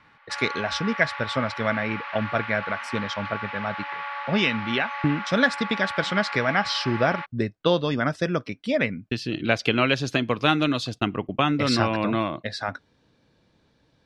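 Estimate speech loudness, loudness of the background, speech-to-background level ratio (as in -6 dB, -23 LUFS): -25.0 LUFS, -33.0 LUFS, 8.0 dB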